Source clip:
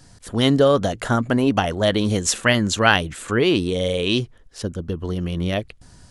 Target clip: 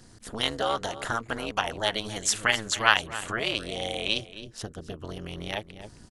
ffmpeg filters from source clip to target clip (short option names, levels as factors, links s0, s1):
-filter_complex "[0:a]tremolo=f=220:d=0.919,aecho=1:1:267:0.15,acrossover=split=750[s0][s1];[s0]acompressor=threshold=0.0158:ratio=5[s2];[s2][s1]amix=inputs=2:normalize=0"